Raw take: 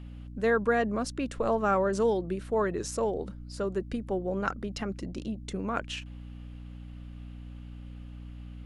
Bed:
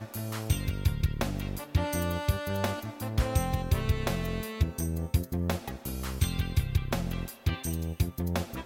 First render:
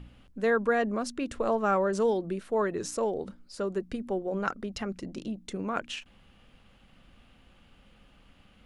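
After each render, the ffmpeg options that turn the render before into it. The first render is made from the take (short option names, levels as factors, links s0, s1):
-af "bandreject=f=60:t=h:w=4,bandreject=f=120:t=h:w=4,bandreject=f=180:t=h:w=4,bandreject=f=240:t=h:w=4,bandreject=f=300:t=h:w=4"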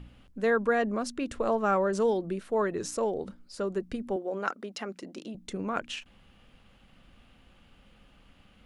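-filter_complex "[0:a]asettb=1/sr,asplit=3[s0][s1][s2];[s0]atrim=end=4.164[s3];[s1]atrim=start=4.16:end=5.35,asetpts=PTS-STARTPTS,afade=t=in:d=0.004:c=qsin,afade=t=out:st=1.186:d=0.004:c=qsin,highpass=290[s4];[s2]atrim=start=5.346[s5];[s3][s4]acrossfade=d=0.004:c1=hsin:c2=qsin[s6];[s6][s5]acrossfade=d=0.004:c1=qsin:c2=hsin"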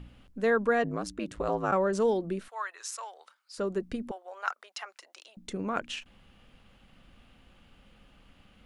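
-filter_complex "[0:a]asplit=3[s0][s1][s2];[s0]afade=t=out:st=0.83:d=0.02[s3];[s1]aeval=exprs='val(0)*sin(2*PI*54*n/s)':c=same,afade=t=in:st=0.83:d=0.02,afade=t=out:st=1.71:d=0.02[s4];[s2]afade=t=in:st=1.71:d=0.02[s5];[s3][s4][s5]amix=inputs=3:normalize=0,asettb=1/sr,asplit=3[s6][s7][s8];[s6]atrim=end=2.484[s9];[s7]atrim=start=2.48:end=3.58,asetpts=PTS-STARTPTS,afade=t=in:d=0.004:c=qsin,afade=t=out:st=1.096:d=0.004:c=qsin,highpass=f=950:w=0.5412,highpass=f=950:w=1.3066[s10];[s8]atrim=start=3.576[s11];[s9][s10]acrossfade=d=0.004:c1=hsin:c2=qsin[s12];[s12][s11]acrossfade=d=0.004:c1=qsin:c2=hsin,asettb=1/sr,asplit=3[s13][s14][s15];[s13]atrim=end=4.114[s16];[s14]atrim=start=4.11:end=5.37,asetpts=PTS-STARTPTS,afade=t=in:d=0.004:c=qsin,afade=t=out:st=1.256:d=0.004:c=qsin,highpass=f=760:w=0.5412,highpass=f=760:w=1.3066[s17];[s15]atrim=start=5.366[s18];[s16][s17]acrossfade=d=0.004:c1=hsin:c2=qsin[s19];[s19][s18]acrossfade=d=0.004:c1=qsin:c2=hsin"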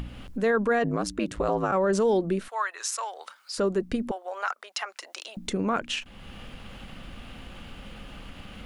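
-filter_complex "[0:a]asplit=2[s0][s1];[s1]acompressor=mode=upward:threshold=0.0282:ratio=2.5,volume=1.12[s2];[s0][s2]amix=inputs=2:normalize=0,alimiter=limit=0.158:level=0:latency=1:release=22"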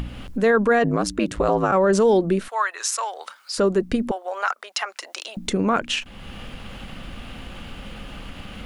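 -af "volume=2"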